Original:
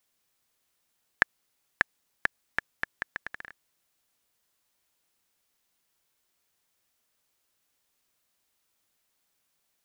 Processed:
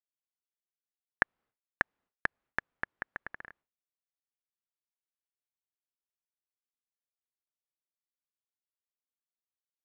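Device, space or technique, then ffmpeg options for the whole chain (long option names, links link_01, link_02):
hearing-loss simulation: -af "lowpass=1600,agate=range=-33dB:threshold=-59dB:ratio=3:detection=peak"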